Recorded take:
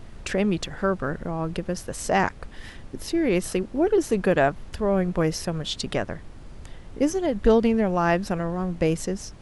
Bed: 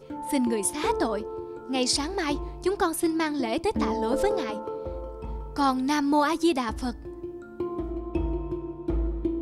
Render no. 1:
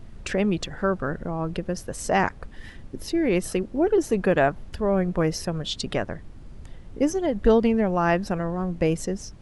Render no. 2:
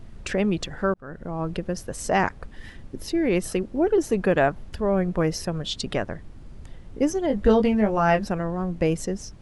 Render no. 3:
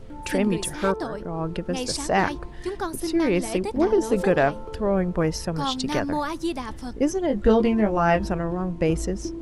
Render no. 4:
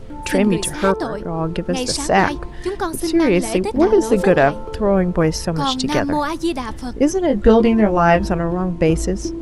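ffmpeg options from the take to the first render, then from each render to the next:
-af "afftdn=nr=6:nf=-43"
-filter_complex "[0:a]asettb=1/sr,asplit=3[a][b][c];[a]atrim=end=7.284[d];[b]atrim=start=7.28:end=8.25,asetpts=PTS-STARTPTS,afade=t=in:d=0.004:c=qsin,afade=t=out:st=0.966:d=0.004:c=qsin,asplit=2[e][f];[f]adelay=19,volume=-4.5dB[g];[e][g]amix=inputs=2:normalize=0,atrim=end_sample=42777[h];[c]atrim=start=8.246[i];[d][h]acrossfade=d=0.004:c1=hsin:c2=qsin[j];[j][i]acrossfade=d=0.004:c1=qsin:c2=hsin,asplit=2[k][l];[k]atrim=end=0.94,asetpts=PTS-STARTPTS,afade=t=out:st=0.936:d=0.004:c=hsin[m];[l]atrim=start=0.94,asetpts=PTS-STARTPTS,afade=t=in:d=0.47[n];[m][n]concat=n=2:v=0:a=1"
-filter_complex "[1:a]volume=-4.5dB[a];[0:a][a]amix=inputs=2:normalize=0"
-af "volume=6.5dB,alimiter=limit=-1dB:level=0:latency=1"

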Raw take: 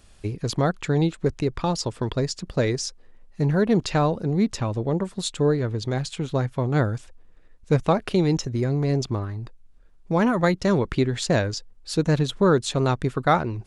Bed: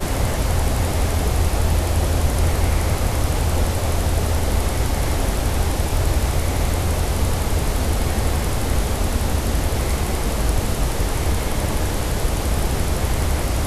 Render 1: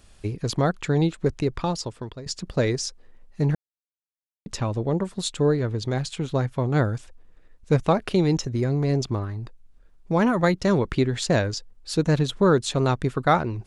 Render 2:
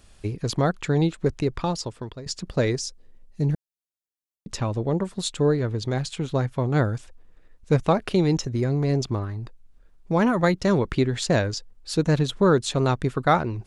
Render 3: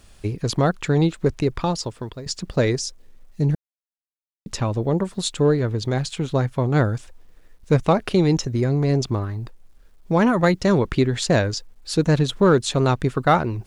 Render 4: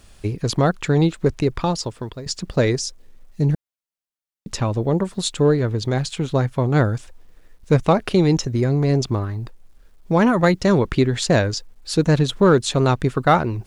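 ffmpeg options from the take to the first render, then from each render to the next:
-filter_complex "[0:a]asplit=4[a][b][c][d];[a]atrim=end=2.26,asetpts=PTS-STARTPTS,afade=t=out:st=1.55:d=0.71:silence=0.125893[e];[b]atrim=start=2.26:end=3.55,asetpts=PTS-STARTPTS,afade=t=in:d=0.004:c=hsin:silence=0.125893,afade=t=out:st=1.286:d=0.004:c=hsin[f];[c]atrim=start=3.55:end=4.46,asetpts=PTS-STARTPTS,volume=0[g];[d]atrim=start=4.46,asetpts=PTS-STARTPTS,afade=t=in:d=0.004:c=hsin[h];[e][f][g][h]concat=n=4:v=0:a=1"
-filter_complex "[0:a]asettb=1/sr,asplit=3[a][b][c];[a]atrim=end=2.794[d];[b]atrim=start=2.79:end=4.5,asetpts=PTS-STARTPTS,afade=t=in:d=0.004:c=qsin,afade=t=out:st=1.706:d=0.004:c=qsin,equalizer=f=1.3k:w=0.54:g=-10[e];[c]atrim=start=4.496[f];[d][e]acrossfade=d=0.004:c1=hsin:c2=qsin[g];[g][f]acrossfade=d=0.004:c1=qsin:c2=hsin"
-filter_complex "[0:a]asplit=2[a][b];[b]volume=14.5dB,asoftclip=hard,volume=-14.5dB,volume=-7.5dB[c];[a][c]amix=inputs=2:normalize=0,acrusher=bits=10:mix=0:aa=0.000001"
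-af "volume=1.5dB"

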